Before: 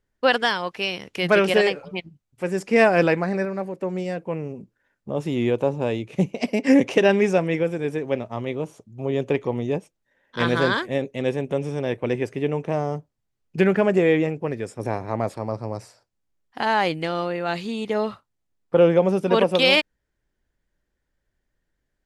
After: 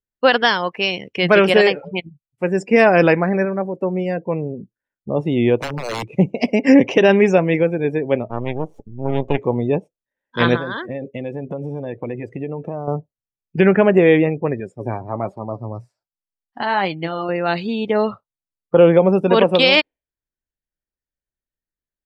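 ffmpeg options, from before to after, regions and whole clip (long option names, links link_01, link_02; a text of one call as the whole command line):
ffmpeg -i in.wav -filter_complex "[0:a]asettb=1/sr,asplit=3[link_01][link_02][link_03];[link_01]atrim=end=5.604[link_04];[link_02]atrim=start=5.6:end=6.13,asetpts=PTS-STARTPTS,afade=type=in:duration=0.004:curve=qsin,afade=type=out:start_time=0.526:duration=0.004:curve=qsin,highpass=44,acompressor=threshold=-24dB:ratio=4:attack=3.2:release=140:knee=1:detection=peak,aeval=exprs='(mod(15.8*val(0)+1,2)-1)/15.8':channel_layout=same[link_05];[link_03]atrim=start=6.126[link_06];[link_04][link_05]acrossfade=duration=0.004:curve1=hsin:curve2=qsin[link_07];[link_07][link_06]acrossfade=duration=0.004:curve1=qsin:curve2=hsin,asettb=1/sr,asplit=3[link_08][link_09][link_10];[link_08]atrim=end=8.304[link_11];[link_09]atrim=start=8.3:end=9.38,asetpts=PTS-STARTPTS,afade=type=in:duration=0.004:curve=qsin,afade=type=out:start_time=1.076:duration=0.004:curve=qsin,highshelf=frequency=7800:gain=-4,acompressor=mode=upward:threshold=-29dB:ratio=2.5:attack=3.2:release=140:knee=2.83:detection=peak,aeval=exprs='max(val(0),0)':channel_layout=same[link_12];[link_10]atrim=start=9.376[link_13];[link_11][link_12]acrossfade=duration=0.004:curve1=hsin:curve2=qsin[link_14];[link_14][link_13]acrossfade=duration=0.004:curve1=qsin:curve2=hsin,asettb=1/sr,asplit=3[link_15][link_16][link_17];[link_15]atrim=end=10.564[link_18];[link_16]atrim=start=10.56:end=12.88,asetpts=PTS-STARTPTS,afade=type=in:duration=0.004:curve=qsin,afade=type=out:start_time=2.316:duration=0.004:curve=qsin,acompressor=threshold=-28dB:ratio=5:attack=3.2:release=140:knee=1:detection=peak,bandreject=frequency=400:width=12[link_19];[link_17]atrim=start=12.876[link_20];[link_18][link_19]acrossfade=duration=0.004:curve1=hsin:curve2=qsin[link_21];[link_21][link_20]acrossfade=duration=0.004:curve1=qsin:curve2=hsin,asettb=1/sr,asplit=3[link_22][link_23][link_24];[link_22]atrim=end=14.604[link_25];[link_23]atrim=start=14.6:end=17.29,asetpts=PTS-STARTPTS,afade=type=in:duration=0.004:curve=qsin,afade=type=out:start_time=2.686:duration=0.004:curve=qsin,equalizer=frequency=480:width_type=o:width=0.26:gain=-5,flanger=delay=4.9:depth=3.8:regen=60:speed=1.3:shape=sinusoidal[link_26];[link_24]atrim=start=17.286[link_27];[link_25][link_26]acrossfade=duration=0.004:curve1=hsin:curve2=qsin[link_28];[link_28][link_27]acrossfade=duration=0.004:curve1=qsin:curve2=hsin,afftdn=noise_reduction=24:noise_floor=-39,alimiter=level_in=7dB:limit=-1dB:release=50:level=0:latency=1,volume=-1dB" out.wav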